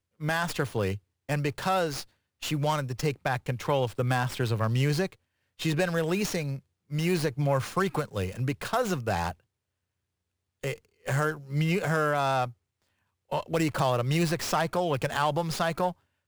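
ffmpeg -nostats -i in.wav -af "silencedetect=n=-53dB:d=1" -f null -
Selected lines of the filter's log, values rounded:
silence_start: 9.40
silence_end: 10.63 | silence_duration: 1.23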